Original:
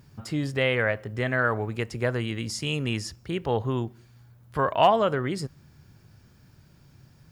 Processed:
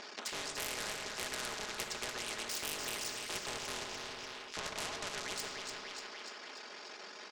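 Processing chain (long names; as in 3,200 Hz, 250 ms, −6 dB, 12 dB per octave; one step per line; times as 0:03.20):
sub-harmonics by changed cycles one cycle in 3, muted
low-pass filter 5,900 Hz 24 dB per octave
reverb reduction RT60 0.58 s
Butterworth high-pass 360 Hz 36 dB per octave
comb filter 4.8 ms, depth 64%
downward compressor 6 to 1, threshold −27 dBFS, peak gain reduction 13 dB
soft clipping −28 dBFS, distortion −12 dB
echo with a time of its own for lows and highs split 1,100 Hz, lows 136 ms, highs 294 ms, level −12 dB
on a send at −9.5 dB: convolution reverb RT60 1.4 s, pre-delay 21 ms
on the sum: every bin compressed towards the loudest bin 4 to 1
level +5.5 dB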